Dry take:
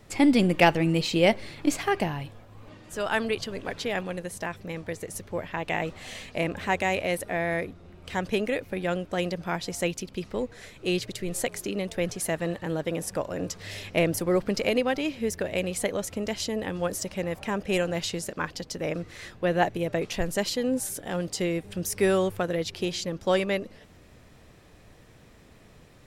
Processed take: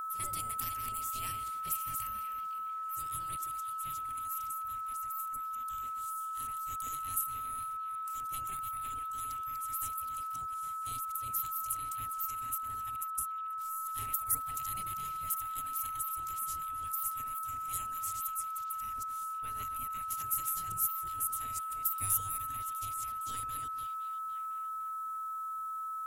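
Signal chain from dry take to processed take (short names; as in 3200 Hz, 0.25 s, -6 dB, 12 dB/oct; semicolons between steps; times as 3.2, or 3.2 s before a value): reverse delay 0.185 s, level -7 dB; spectral gate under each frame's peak -20 dB weak; 12.96–13.58 gate -43 dBFS, range -19 dB; EQ curve 110 Hz 0 dB, 620 Hz -17 dB, 4700 Hz -15 dB, 12000 Hz +14 dB; delay with a stepping band-pass 0.508 s, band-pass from 3400 Hz, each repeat -0.7 oct, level -8 dB; whine 1300 Hz -36 dBFS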